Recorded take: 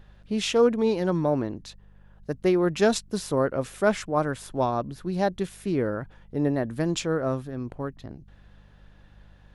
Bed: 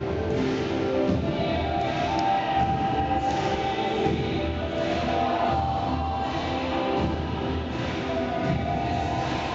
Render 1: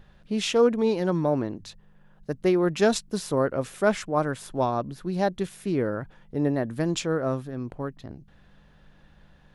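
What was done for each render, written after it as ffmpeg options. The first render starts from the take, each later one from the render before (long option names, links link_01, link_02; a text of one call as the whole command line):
ffmpeg -i in.wav -af "bandreject=frequency=50:width_type=h:width=4,bandreject=frequency=100:width_type=h:width=4" out.wav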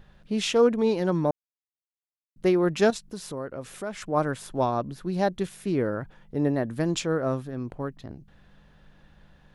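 ffmpeg -i in.wav -filter_complex "[0:a]asettb=1/sr,asplit=3[link_01][link_02][link_03];[link_01]atrim=end=2.904[link_04];[link_02]atrim=start=2.9:end=4.02,asetpts=PTS-STARTPTS,afade=type=in:duration=0.004:curve=qsin,afade=type=out:start_time=1.116:duration=0.004:curve=qsin,acompressor=threshold=-38dB:ratio=2:attack=3.2:release=140:knee=1:detection=peak[link_05];[link_03]atrim=start=4.016[link_06];[link_04][link_05]acrossfade=duration=0.004:curve1=hsin:curve2=qsin[link_07];[link_07][link_06]acrossfade=duration=0.004:curve1=qsin:curve2=hsin,asplit=3[link_08][link_09][link_10];[link_08]atrim=end=1.31,asetpts=PTS-STARTPTS,afade=type=out:start_time=1.306:duration=0.004:curve=hsin[link_11];[link_09]atrim=start=1.31:end=2.36,asetpts=PTS-STARTPTS,volume=0[link_12];[link_10]atrim=start=2.36,asetpts=PTS-STARTPTS,afade=type=in:duration=0.004:curve=hsin[link_13];[link_11][link_12][link_13]concat=n=3:v=0:a=1" out.wav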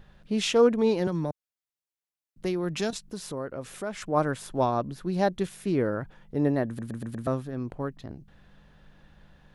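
ffmpeg -i in.wav -filter_complex "[0:a]asettb=1/sr,asplit=3[link_01][link_02][link_03];[link_01]atrim=end=1.074[link_04];[link_02]atrim=start=1.07:end=2.93,asetpts=PTS-STARTPTS,afade=type=in:duration=0.004:curve=qsin,afade=type=out:start_time=1.856:duration=0.004:curve=qsin,acrossover=split=160|3000[link_05][link_06][link_07];[link_06]acompressor=threshold=-31dB:ratio=2.5:attack=3.2:release=140:knee=2.83:detection=peak[link_08];[link_05][link_08][link_07]amix=inputs=3:normalize=0[link_09];[link_03]atrim=start=2.926[link_10];[link_04][link_09]acrossfade=duration=0.004:curve1=hsin:curve2=qsin[link_11];[link_11][link_10]acrossfade=duration=0.004:curve1=qsin:curve2=hsin,asplit=6[link_12][link_13][link_14][link_15][link_16][link_17];[link_12]atrim=end=6.792[link_18];[link_13]atrim=start=6.668:end=6.792[link_19];[link_14]atrim=start=6.668:end=6.792[link_20];[link_15]atrim=start=6.668:end=6.792[link_21];[link_16]atrim=start=6.668:end=6.792[link_22];[link_17]atrim=start=7.268[link_23];[link_18][link_19]acrossfade=duration=0.004:curve1=hsin:curve2=hsin[link_24];[link_24][link_20]acrossfade=duration=0.004:curve1=hsin:curve2=hsin[link_25];[link_25][link_21]acrossfade=duration=0.004:curve1=hsin:curve2=hsin[link_26];[link_26][link_22]acrossfade=duration=0.004:curve1=hsin:curve2=hsin[link_27];[link_27][link_23]acrossfade=duration=0.004:curve1=hsin:curve2=hsin" out.wav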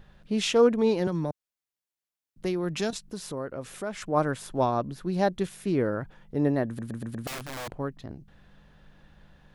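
ffmpeg -i in.wav -filter_complex "[0:a]asettb=1/sr,asplit=3[link_01][link_02][link_03];[link_01]atrim=end=7.274[link_04];[link_02]atrim=start=7.27:end=7.68,asetpts=PTS-STARTPTS,afade=type=in:duration=0.004:curve=qsin,afade=type=out:start_time=0.406:duration=0.004:curve=qsin,aeval=exprs='(mod(37.6*val(0)+1,2)-1)/37.6':channel_layout=same[link_05];[link_03]atrim=start=7.676[link_06];[link_04][link_05]acrossfade=duration=0.004:curve1=hsin:curve2=qsin[link_07];[link_07][link_06]acrossfade=duration=0.004:curve1=qsin:curve2=hsin" out.wav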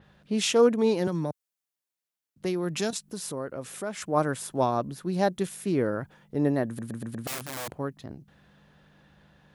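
ffmpeg -i in.wav -af "highpass=89,adynamicequalizer=threshold=0.00251:dfrequency=6300:dqfactor=0.7:tfrequency=6300:tqfactor=0.7:attack=5:release=100:ratio=0.375:range=4:mode=boostabove:tftype=highshelf" out.wav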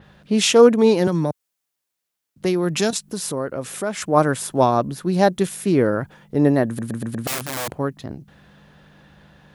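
ffmpeg -i in.wav -af "volume=8.5dB" out.wav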